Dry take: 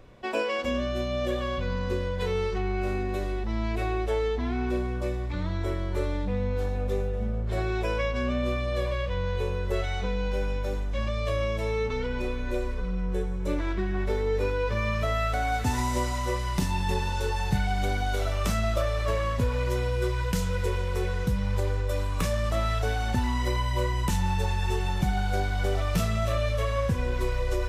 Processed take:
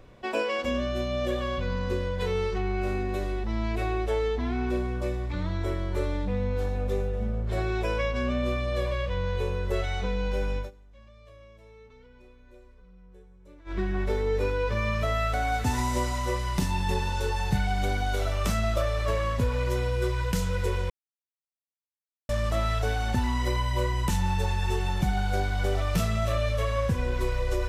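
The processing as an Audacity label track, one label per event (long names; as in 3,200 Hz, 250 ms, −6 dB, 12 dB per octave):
10.580000	13.780000	duck −23.5 dB, fades 0.13 s
20.900000	22.290000	silence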